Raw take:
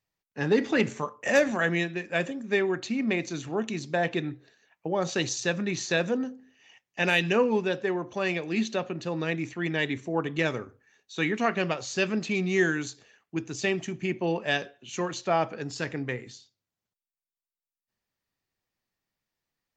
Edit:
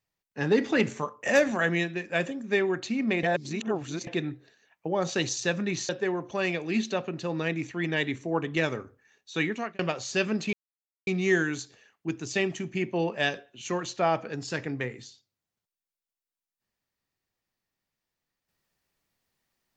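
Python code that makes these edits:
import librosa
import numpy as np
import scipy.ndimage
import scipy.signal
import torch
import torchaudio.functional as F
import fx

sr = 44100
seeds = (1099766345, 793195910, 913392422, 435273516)

y = fx.edit(x, sr, fx.reverse_span(start_s=3.23, length_s=0.84),
    fx.cut(start_s=5.89, length_s=1.82),
    fx.fade_out_span(start_s=11.23, length_s=0.38),
    fx.insert_silence(at_s=12.35, length_s=0.54), tone=tone)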